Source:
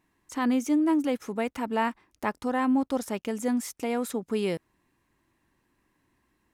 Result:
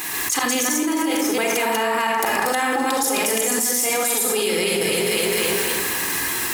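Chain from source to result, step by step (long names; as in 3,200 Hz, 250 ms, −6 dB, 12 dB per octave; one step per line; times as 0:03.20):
delay that plays each chunk backwards 138 ms, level 0 dB
spectral tilt +4.5 dB per octave
volume swells 144 ms
delay that swaps between a low-pass and a high-pass 128 ms, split 1,800 Hz, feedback 63%, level −10 dB
convolution reverb RT60 0.55 s, pre-delay 30 ms, DRR 2.5 dB
envelope flattener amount 100%
level −1.5 dB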